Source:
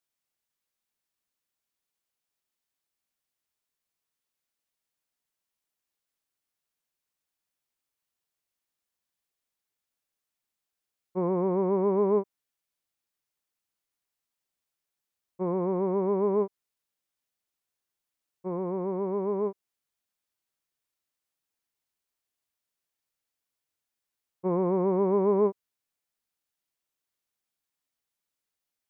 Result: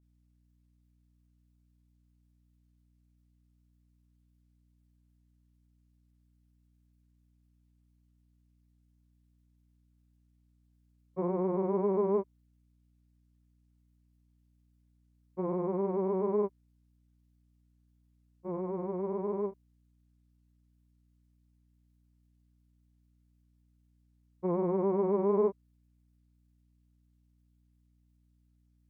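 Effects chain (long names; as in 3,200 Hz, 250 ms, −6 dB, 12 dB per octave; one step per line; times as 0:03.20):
granular cloud, spray 26 ms, pitch spread up and down by 0 semitones
mains hum 60 Hz, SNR 30 dB
level −3 dB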